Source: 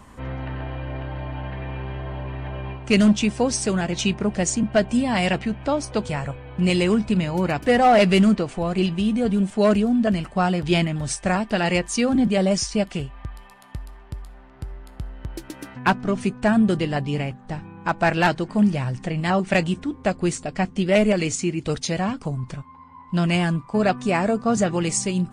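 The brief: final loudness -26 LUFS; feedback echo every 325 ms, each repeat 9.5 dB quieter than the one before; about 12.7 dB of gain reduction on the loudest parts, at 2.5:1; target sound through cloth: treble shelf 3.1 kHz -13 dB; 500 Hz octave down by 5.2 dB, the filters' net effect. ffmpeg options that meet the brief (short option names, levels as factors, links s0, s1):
-af "equalizer=f=500:t=o:g=-6.5,acompressor=threshold=0.02:ratio=2.5,highshelf=f=3100:g=-13,aecho=1:1:325|650|975|1300:0.335|0.111|0.0365|0.012,volume=2.66"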